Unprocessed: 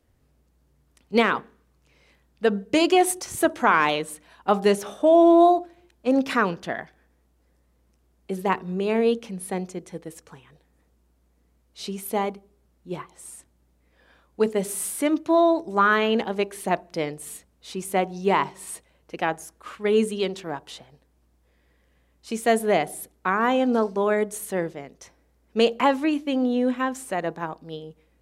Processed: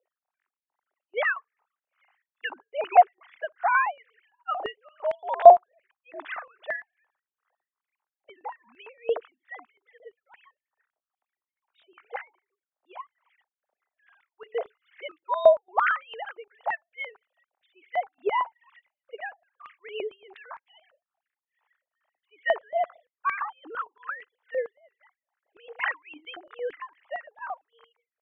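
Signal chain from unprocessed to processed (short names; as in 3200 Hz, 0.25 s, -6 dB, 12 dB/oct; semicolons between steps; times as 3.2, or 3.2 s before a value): sine-wave speech; tremolo 2.4 Hz, depth 93%; 23.39–24.35 fixed phaser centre 2200 Hz, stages 6; stepped high-pass 8.8 Hz 640–2100 Hz; gain -4 dB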